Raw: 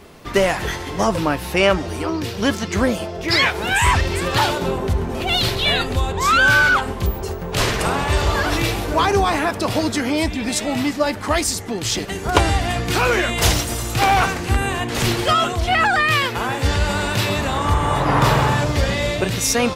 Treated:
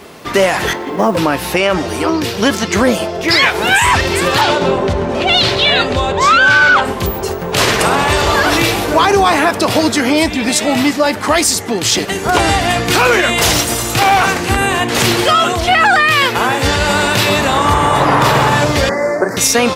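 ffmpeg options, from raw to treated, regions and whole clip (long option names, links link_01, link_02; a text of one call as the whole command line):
ffmpeg -i in.wav -filter_complex "[0:a]asettb=1/sr,asplit=3[link_01][link_02][link_03];[link_01]atrim=end=0.734[link_04];[link_02]atrim=start=0.73:end=1.17,asetpts=PTS-STARTPTS,afade=type=in:duration=0.004:curve=qsin,afade=type=out:start_time=0.436:duration=0.004:curve=qsin,lowpass=frequency=1100:poles=1,lowshelf=frequency=150:width_type=q:width=1.5:gain=-11,acrusher=bits=8:mode=log:mix=0:aa=0.000001[link_05];[link_03]atrim=start=1.166[link_06];[link_04][link_05]acrossfade=duration=0.004:curve1=hsin:curve2=qsin[link_07];[link_07][link_06]acrossfade=duration=0.004:curve1=qsin:curve2=hsin,asettb=1/sr,asplit=3[link_08][link_09][link_10];[link_08]atrim=end=4.414[link_11];[link_09]atrim=start=4.41:end=6.85,asetpts=PTS-STARTPTS,afade=type=in:duration=0.004:curve=qsin,afade=type=out:start_time=2.436:duration=0.004:curve=qsin,lowpass=5900,aeval=exprs='val(0)+0.0282*sin(2*PI*580*n/s)':channel_layout=same[link_12];[link_10]atrim=start=6.846[link_13];[link_11][link_12]acrossfade=duration=0.004:curve1=hsin:curve2=qsin[link_14];[link_14][link_13]acrossfade=duration=0.004:curve1=qsin:curve2=hsin,asettb=1/sr,asplit=3[link_15][link_16][link_17];[link_15]atrim=end=18.894[link_18];[link_16]atrim=start=18.89:end=19.37,asetpts=PTS-STARTPTS,afade=type=in:duration=0.004:curve=qsin,afade=type=out:start_time=0.476:duration=0.004:curve=qsin,asuperstop=centerf=3100:order=8:qfactor=1,acrossover=split=220 3500:gain=0.126 1 0.224[link_19][link_20][link_21];[link_19][link_20][link_21]amix=inputs=3:normalize=0[link_22];[link_17]atrim=start=19.366[link_23];[link_18][link_22]acrossfade=duration=0.004:curve1=hsin:curve2=qsin[link_24];[link_24][link_23]acrossfade=duration=0.004:curve1=qsin:curve2=hsin,highpass=frequency=210:poles=1,alimiter=level_in=10.5dB:limit=-1dB:release=50:level=0:latency=1,volume=-1dB" out.wav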